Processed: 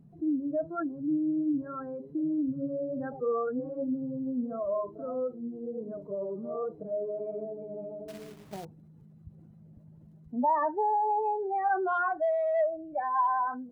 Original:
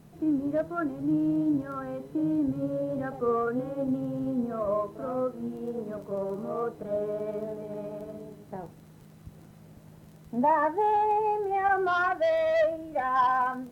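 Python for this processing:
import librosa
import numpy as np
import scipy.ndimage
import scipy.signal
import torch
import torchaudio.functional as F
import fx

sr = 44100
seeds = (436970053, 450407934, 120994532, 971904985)

y = fx.spec_expand(x, sr, power=1.7)
y = fx.quant_companded(y, sr, bits=4, at=(8.08, 8.65))
y = F.gain(torch.from_numpy(y), -2.5).numpy()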